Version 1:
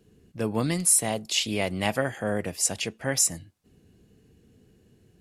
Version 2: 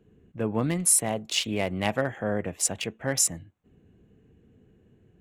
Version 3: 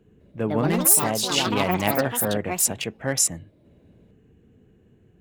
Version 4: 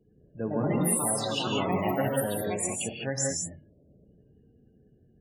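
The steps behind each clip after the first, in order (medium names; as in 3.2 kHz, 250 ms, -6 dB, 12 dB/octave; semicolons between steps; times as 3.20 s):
local Wiener filter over 9 samples
ever faster or slower copies 206 ms, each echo +5 st, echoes 3; trim +2.5 dB
loudest bins only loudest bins 32; gated-style reverb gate 220 ms rising, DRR 0 dB; trim -7 dB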